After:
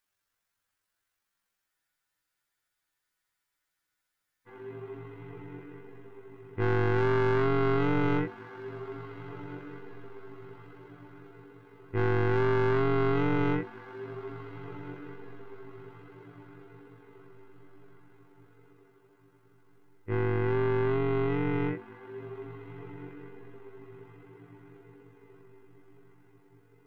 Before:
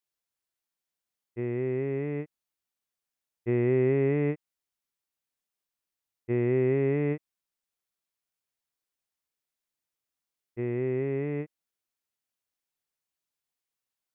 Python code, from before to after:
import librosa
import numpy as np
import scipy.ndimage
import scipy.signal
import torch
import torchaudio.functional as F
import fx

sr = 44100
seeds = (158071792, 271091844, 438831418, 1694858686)

p1 = 10.0 ** (-30.0 / 20.0) * np.tanh(x / 10.0 ** (-30.0 / 20.0))
p2 = fx.peak_eq(p1, sr, hz=1500.0, db=9.5, octaves=1.1)
p3 = p2 + fx.echo_diffused(p2, sr, ms=768, feedback_pct=46, wet_db=-15.5, dry=0)
p4 = fx.stretch_grains(p3, sr, factor=1.9, grain_ms=43.0)
p5 = fx.low_shelf(p4, sr, hz=100.0, db=10.5)
p6 = fx.spec_freeze(p5, sr, seeds[0], at_s=1.7, hold_s=2.76)
y = p6 * librosa.db_to_amplitude(5.0)